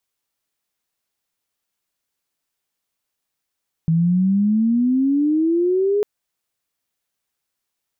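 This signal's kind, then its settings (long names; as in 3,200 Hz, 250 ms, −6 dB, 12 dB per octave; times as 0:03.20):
glide logarithmic 160 Hz → 420 Hz −13.5 dBFS → −15 dBFS 2.15 s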